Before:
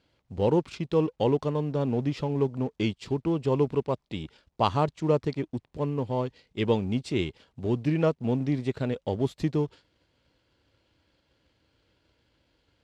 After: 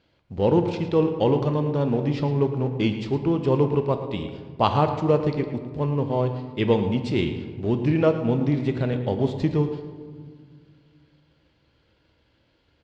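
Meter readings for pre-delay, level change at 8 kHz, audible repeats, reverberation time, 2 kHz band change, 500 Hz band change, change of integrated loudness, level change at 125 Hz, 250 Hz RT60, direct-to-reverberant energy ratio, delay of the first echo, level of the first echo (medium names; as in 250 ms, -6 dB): 5 ms, no reading, 1, 1.9 s, +4.5 dB, +4.5 dB, +4.5 dB, +5.5 dB, 2.6 s, 5.5 dB, 111 ms, -12.0 dB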